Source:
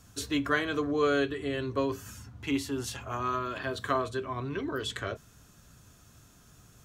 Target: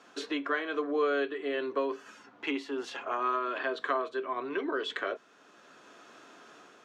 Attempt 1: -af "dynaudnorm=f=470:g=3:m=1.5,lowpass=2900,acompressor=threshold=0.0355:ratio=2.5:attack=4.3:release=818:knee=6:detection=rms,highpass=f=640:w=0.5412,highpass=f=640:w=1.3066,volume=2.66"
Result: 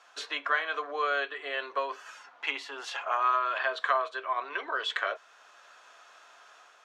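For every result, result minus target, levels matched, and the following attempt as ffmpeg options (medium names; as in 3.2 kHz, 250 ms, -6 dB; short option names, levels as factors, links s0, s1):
250 Hz band -18.5 dB; compression: peak gain reduction -5 dB
-af "dynaudnorm=f=470:g=3:m=1.5,lowpass=2900,acompressor=threshold=0.0355:ratio=2.5:attack=4.3:release=818:knee=6:detection=rms,highpass=f=320:w=0.5412,highpass=f=320:w=1.3066,volume=2.66"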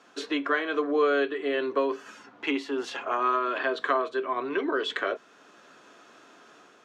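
compression: peak gain reduction -5 dB
-af "dynaudnorm=f=470:g=3:m=1.5,lowpass=2900,acompressor=threshold=0.0141:ratio=2.5:attack=4.3:release=818:knee=6:detection=rms,highpass=f=320:w=0.5412,highpass=f=320:w=1.3066,volume=2.66"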